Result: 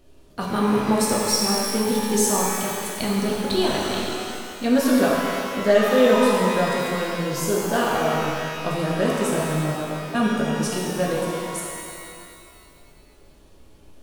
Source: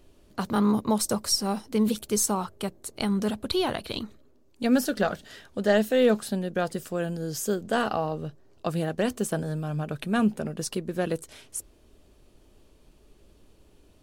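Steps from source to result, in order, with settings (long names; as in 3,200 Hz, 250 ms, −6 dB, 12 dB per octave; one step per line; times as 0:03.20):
0:09.71–0:10.15: Chebyshev band-pass filter 510–1,100 Hz
reverb with rising layers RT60 2.4 s, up +12 semitones, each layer −8 dB, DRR −4 dB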